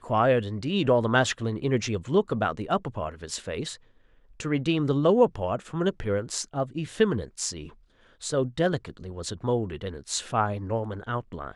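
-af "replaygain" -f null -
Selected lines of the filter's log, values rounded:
track_gain = +6.5 dB
track_peak = 0.281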